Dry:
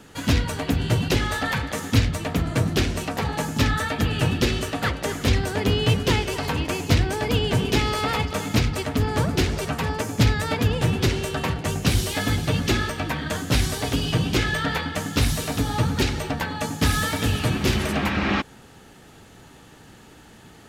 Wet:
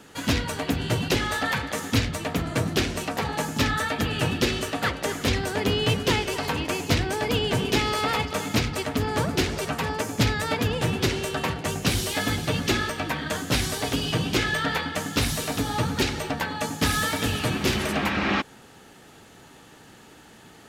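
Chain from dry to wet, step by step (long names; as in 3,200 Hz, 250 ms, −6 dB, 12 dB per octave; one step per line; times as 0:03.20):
low-shelf EQ 130 Hz −9.5 dB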